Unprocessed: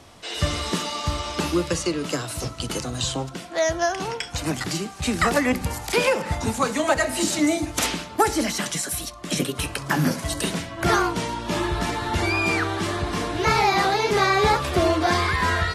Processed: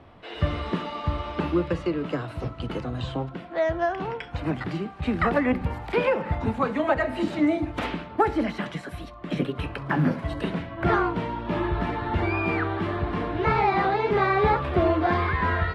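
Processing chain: air absorption 500 m

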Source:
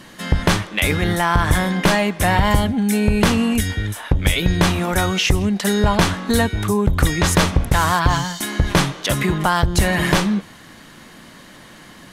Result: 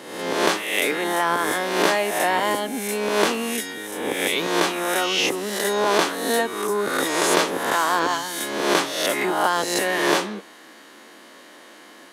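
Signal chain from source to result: spectral swells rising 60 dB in 0.96 s; HPF 330 Hz 24 dB/oct; low shelf 460 Hz +7.5 dB; gain -5.5 dB

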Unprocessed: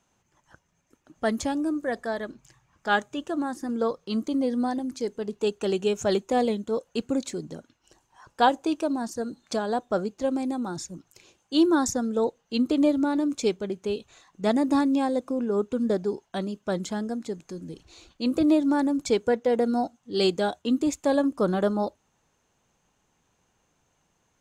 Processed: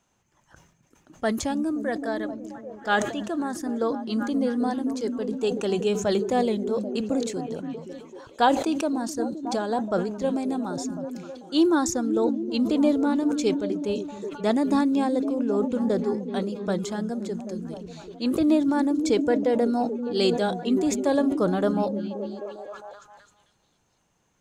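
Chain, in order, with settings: delay with a stepping band-pass 0.262 s, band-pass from 170 Hz, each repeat 0.7 oct, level -4 dB; sustainer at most 78 dB/s

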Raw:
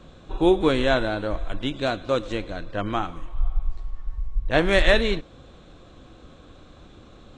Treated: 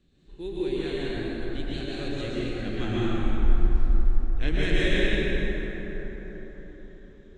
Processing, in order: Doppler pass-by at 3.26, 17 m/s, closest 11 m; band shelf 870 Hz -13.5 dB; plate-style reverb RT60 4.7 s, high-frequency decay 0.4×, pre-delay 0.105 s, DRR -9 dB; gain -3.5 dB

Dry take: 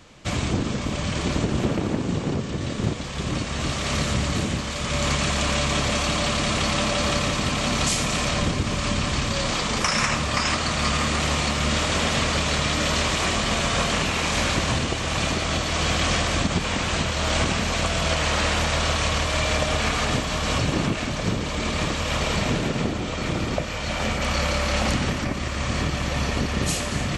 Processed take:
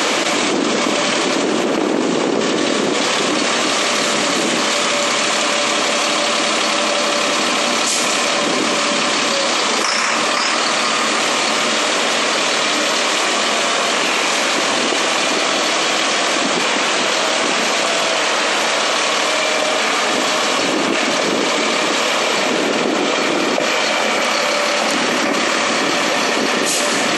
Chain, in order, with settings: HPF 280 Hz 24 dB/oct; fast leveller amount 100%; gain +3.5 dB

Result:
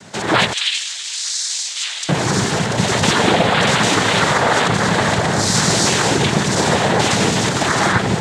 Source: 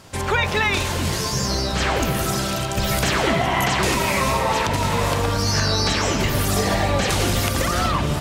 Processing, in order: noise vocoder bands 6; 0.53–2.09 Butterworth band-pass 5400 Hz, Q 0.81; gain +6 dB

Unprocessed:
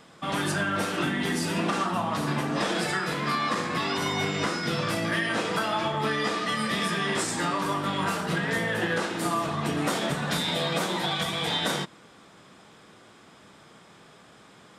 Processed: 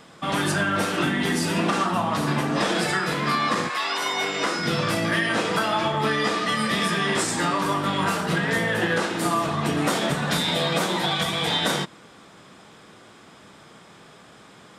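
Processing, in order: 3.68–4.57 HPF 870 Hz -> 260 Hz 12 dB/oct; gain +4 dB

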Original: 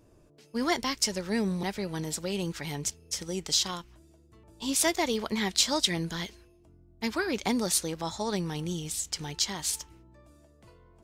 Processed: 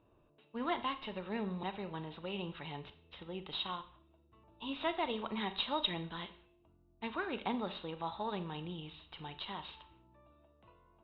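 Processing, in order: one diode to ground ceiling -14 dBFS; rippled Chebyshev low-pass 3900 Hz, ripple 9 dB; Schroeder reverb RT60 0.48 s, combs from 29 ms, DRR 11 dB; gain -1.5 dB

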